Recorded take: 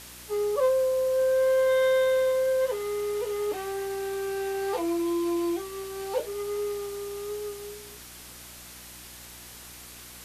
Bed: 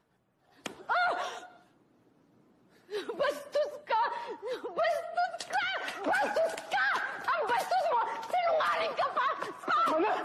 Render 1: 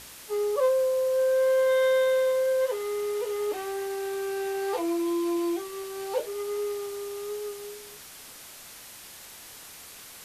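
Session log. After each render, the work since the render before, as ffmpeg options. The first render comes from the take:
-af "bandreject=f=60:t=h:w=4,bandreject=f=120:t=h:w=4,bandreject=f=180:t=h:w=4,bandreject=f=240:t=h:w=4,bandreject=f=300:t=h:w=4,bandreject=f=360:t=h:w=4"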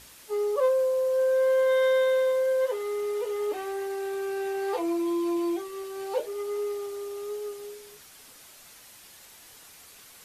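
-af "afftdn=nr=6:nf=-46"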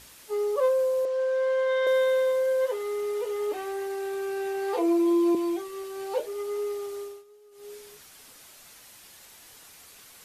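-filter_complex "[0:a]asettb=1/sr,asplit=3[s0][s1][s2];[s0]atrim=end=1.054[s3];[s1]atrim=start=1.05:end=1.87,asetpts=PTS-STARTPTS,afade=t=in:d=0.004:c=qsin,afade=t=out:st=0.816:d=0.004:c=qsin,highpass=510,lowpass=5300[s4];[s2]atrim=start=1.866[s5];[s3][s4]acrossfade=d=0.004:c1=hsin:c2=qsin[s6];[s6][s5]acrossfade=d=0.004:c1=qsin:c2=hsin,asettb=1/sr,asplit=3[s7][s8][s9];[s7]atrim=end=4.774[s10];[s8]atrim=start=4.77:end=5.35,asetpts=PTS-STARTPTS,afade=t=in:d=0.004:c=qsin,afade=t=out:st=0.576:d=0.004:c=qsin,highpass=f=410:t=q:w=3.9[s11];[s9]atrim=start=5.346[s12];[s10][s11]acrossfade=d=0.004:c1=hsin:c2=qsin[s13];[s13][s12]acrossfade=d=0.004:c1=qsin:c2=hsin,asplit=3[s14][s15][s16];[s14]atrim=end=7.24,asetpts=PTS-STARTPTS,afade=t=out:st=7:d=0.24:silence=0.1[s17];[s15]atrim=start=7.24:end=7.51,asetpts=PTS-STARTPTS,volume=0.1[s18];[s16]atrim=start=7.51,asetpts=PTS-STARTPTS,afade=t=in:d=0.24:silence=0.1[s19];[s17][s18][s19]concat=n=3:v=0:a=1"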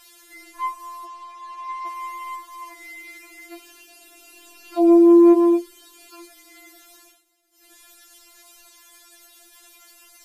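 -filter_complex "[0:a]asplit=2[s0][s1];[s1]asoftclip=type=tanh:threshold=0.0562,volume=0.335[s2];[s0][s2]amix=inputs=2:normalize=0,afftfilt=real='re*4*eq(mod(b,16),0)':imag='im*4*eq(mod(b,16),0)':win_size=2048:overlap=0.75"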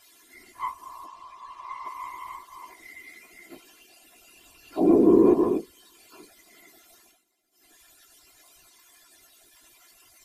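-af "afftfilt=real='hypot(re,im)*cos(2*PI*random(0))':imag='hypot(re,im)*sin(2*PI*random(1))':win_size=512:overlap=0.75"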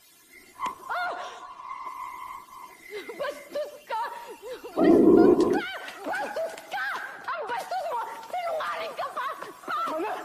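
-filter_complex "[1:a]volume=0.794[s0];[0:a][s0]amix=inputs=2:normalize=0"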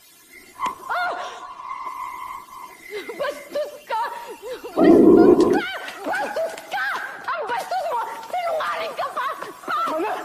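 -af "volume=2,alimiter=limit=0.708:level=0:latency=1"

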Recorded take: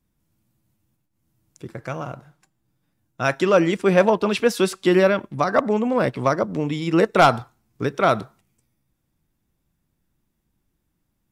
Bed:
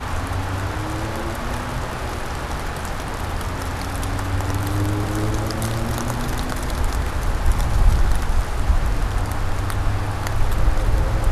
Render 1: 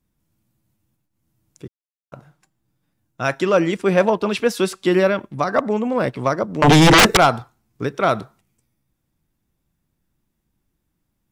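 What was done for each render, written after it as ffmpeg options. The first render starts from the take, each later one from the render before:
-filter_complex "[0:a]asettb=1/sr,asplit=3[s0][s1][s2];[s0]atrim=end=6.624[s3];[s1]atrim=start=6.62:end=7.17,asetpts=PTS-STARTPTS,afade=t=in:d=0.004:c=qsin,afade=t=out:st=0.546:d=0.004:c=qsin,aeval=exprs='0.473*sin(PI/2*7.94*val(0)/0.473)':c=same[s4];[s2]atrim=start=7.166[s5];[s3][s4]acrossfade=d=0.004:c1=hsin:c2=qsin[s6];[s6][s5]acrossfade=d=0.004:c1=qsin:c2=hsin,asplit=3[s7][s8][s9];[s7]atrim=end=1.68,asetpts=PTS-STARTPTS,afade=t=out:st=1.676:d=0.004:c=hsin[s10];[s8]atrim=start=1.68:end=2.12,asetpts=PTS-STARTPTS,volume=0[s11];[s9]atrim=start=2.12,asetpts=PTS-STARTPTS,afade=t=in:d=0.004:c=hsin[s12];[s10][s11][s12]concat=n=3:v=0:a=1"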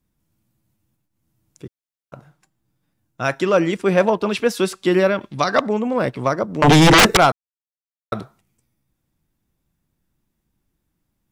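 -filter_complex "[0:a]asettb=1/sr,asplit=3[s0][s1][s2];[s0]atrim=end=5.214[s3];[s1]atrim=start=5.21:end=5.67,asetpts=PTS-STARTPTS,afade=t=in:d=0.004:c=qsin,afade=t=out:st=0.456:d=0.004:c=qsin,equalizer=f=4000:w=0.78:g=12.5[s4];[s2]atrim=start=5.666[s5];[s3][s4]acrossfade=d=0.004:c1=hsin:c2=qsin[s6];[s6][s5]acrossfade=d=0.004:c1=qsin:c2=hsin,asplit=3[s7][s8][s9];[s7]atrim=end=7.32,asetpts=PTS-STARTPTS,afade=t=out:st=7.316:d=0.004:c=hsin[s10];[s8]atrim=start=7.32:end=8.12,asetpts=PTS-STARTPTS,volume=0[s11];[s9]atrim=start=8.12,asetpts=PTS-STARTPTS,afade=t=in:d=0.004:c=hsin[s12];[s10][s11][s12]concat=n=3:v=0:a=1"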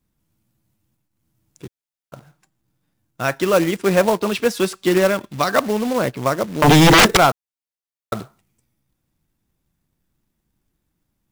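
-af "acrusher=bits=3:mode=log:mix=0:aa=0.000001"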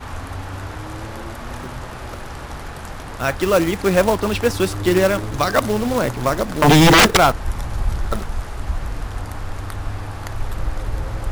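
-filter_complex "[1:a]volume=0.531[s0];[0:a][s0]amix=inputs=2:normalize=0"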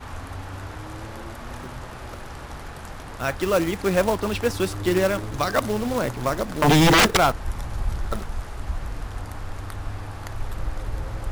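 -af "volume=0.562"

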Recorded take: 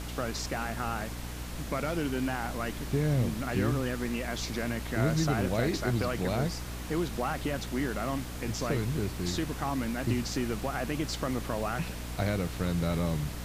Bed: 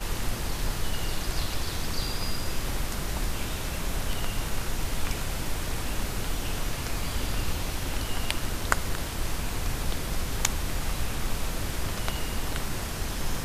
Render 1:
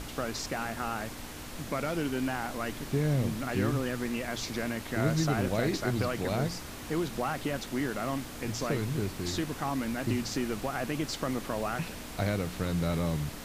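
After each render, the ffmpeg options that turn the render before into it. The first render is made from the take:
-af "bandreject=f=60:t=h:w=4,bandreject=f=120:t=h:w=4,bandreject=f=180:t=h:w=4"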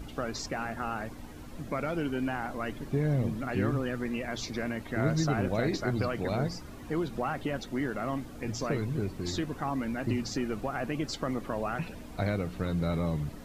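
-af "afftdn=nr=12:nf=-42"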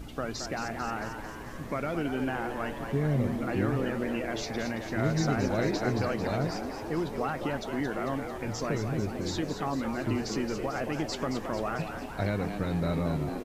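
-filter_complex "[0:a]asplit=9[s0][s1][s2][s3][s4][s5][s6][s7][s8];[s1]adelay=223,afreqshift=98,volume=0.398[s9];[s2]adelay=446,afreqshift=196,volume=0.251[s10];[s3]adelay=669,afreqshift=294,volume=0.158[s11];[s4]adelay=892,afreqshift=392,volume=0.1[s12];[s5]adelay=1115,afreqshift=490,volume=0.0624[s13];[s6]adelay=1338,afreqshift=588,volume=0.0394[s14];[s7]adelay=1561,afreqshift=686,volume=0.0248[s15];[s8]adelay=1784,afreqshift=784,volume=0.0157[s16];[s0][s9][s10][s11][s12][s13][s14][s15][s16]amix=inputs=9:normalize=0"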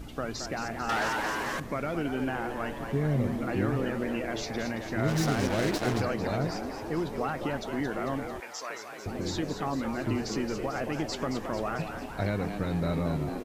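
-filter_complex "[0:a]asettb=1/sr,asplit=3[s0][s1][s2];[s0]atrim=end=0.894[s3];[s1]atrim=start=0.89:end=1.6,asetpts=PTS-STARTPTS,afade=t=in:d=0.004:c=qsin,afade=t=out:st=0.706:d=0.004:c=qsin,asplit=2[s4][s5];[s5]highpass=f=720:p=1,volume=12.6,asoftclip=type=tanh:threshold=0.0944[s6];[s4][s6]amix=inputs=2:normalize=0,lowpass=f=6600:p=1,volume=0.501[s7];[s2]atrim=start=1.596[s8];[s3][s7]acrossfade=d=0.004:c1=hsin:c2=qsin[s9];[s9][s8]acrossfade=d=0.004:c1=qsin:c2=hsin,asplit=3[s10][s11][s12];[s10]afade=t=out:st=5.07:d=0.02[s13];[s11]acrusher=bits=4:mix=0:aa=0.5,afade=t=in:st=5.07:d=0.02,afade=t=out:st=6:d=0.02[s14];[s12]afade=t=in:st=6:d=0.02[s15];[s13][s14][s15]amix=inputs=3:normalize=0,asettb=1/sr,asplit=3[s16][s17][s18];[s16]atrim=end=8.404[s19];[s17]atrim=start=8.4:end=9.06,asetpts=PTS-STARTPTS,afade=t=in:d=0.004:c=qsin,afade=t=out:st=0.656:d=0.004:c=qsin,highpass=830[s20];[s18]atrim=start=9.056[s21];[s19][s20]acrossfade=d=0.004:c1=hsin:c2=qsin[s22];[s22][s21]acrossfade=d=0.004:c1=qsin:c2=hsin"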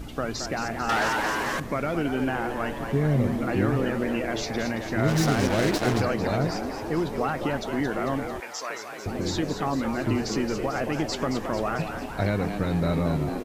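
-af "volume=1.68"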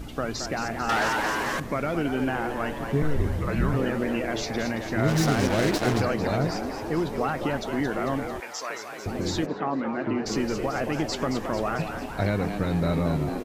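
-filter_complex "[0:a]asettb=1/sr,asplit=3[s0][s1][s2];[s0]atrim=end=3.024[s3];[s1]atrim=start=3.02:end=3.74,asetpts=PTS-STARTPTS,afade=t=in:d=0.004:c=qsin,afade=t=out:st=0.716:d=0.004:c=qsin,afreqshift=-150[s4];[s2]atrim=start=3.736[s5];[s3][s4]acrossfade=d=0.004:c1=hsin:c2=qsin[s6];[s6][s5]acrossfade=d=0.004:c1=qsin:c2=hsin,asplit=3[s7][s8][s9];[s7]afade=t=out:st=9.45:d=0.02[s10];[s8]highpass=190,lowpass=2200,afade=t=in:st=9.45:d=0.02,afade=t=out:st=10.25:d=0.02[s11];[s9]afade=t=in:st=10.25:d=0.02[s12];[s10][s11][s12]amix=inputs=3:normalize=0"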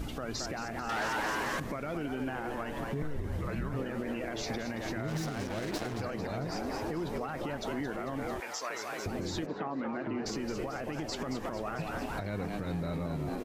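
-af "acompressor=threshold=0.0316:ratio=3,alimiter=level_in=1.26:limit=0.0631:level=0:latency=1:release=125,volume=0.794"

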